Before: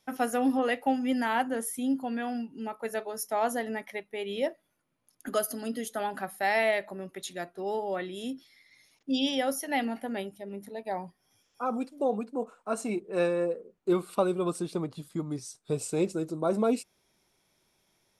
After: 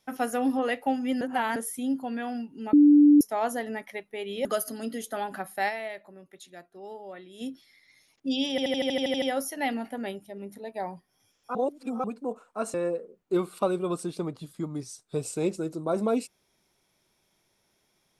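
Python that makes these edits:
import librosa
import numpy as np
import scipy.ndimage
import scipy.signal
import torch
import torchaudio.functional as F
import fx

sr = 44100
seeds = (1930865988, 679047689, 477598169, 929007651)

y = fx.edit(x, sr, fx.reverse_span(start_s=1.21, length_s=0.35),
    fx.bleep(start_s=2.73, length_s=0.48, hz=293.0, db=-12.5),
    fx.cut(start_s=4.45, length_s=0.83),
    fx.fade_down_up(start_s=6.51, length_s=1.74, db=-10.0, fade_s=0.23, curve='exp'),
    fx.stutter(start_s=9.33, slice_s=0.08, count=10),
    fx.reverse_span(start_s=11.66, length_s=0.49),
    fx.cut(start_s=12.85, length_s=0.45), tone=tone)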